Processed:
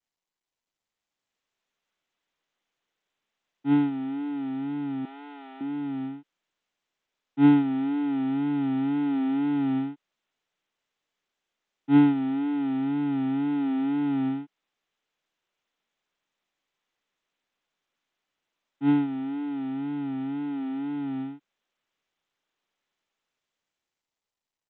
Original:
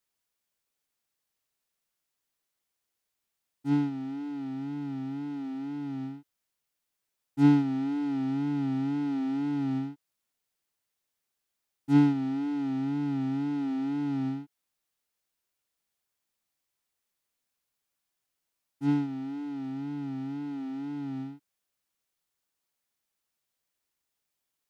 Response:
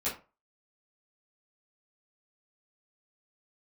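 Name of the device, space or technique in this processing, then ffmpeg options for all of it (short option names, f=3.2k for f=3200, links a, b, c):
Bluetooth headset: -filter_complex "[0:a]asettb=1/sr,asplit=3[a][b][c];[a]atrim=end=5.054[d];[b]atrim=start=5.05:end=5.61,asetpts=PTS-STARTPTS,afade=t=in:d=0.004:c=qsin,afade=t=out:st=0.556:d=0.004:c=qsin,highpass=f=440:w=0.5412,highpass=f=440:w=1.3066[e];[c]atrim=start=5.606[f];[d][e]acrossfade=d=0.004:c1=hsin:c2=qsin[g];[g][f]acrossfade=d=0.004:c1=qsin:c2=hsin,highpass=190,dynaudnorm=f=160:g=17:m=11dB,aresample=8000,aresample=44100,volume=-5.5dB" -ar 16000 -c:a sbc -b:a 64k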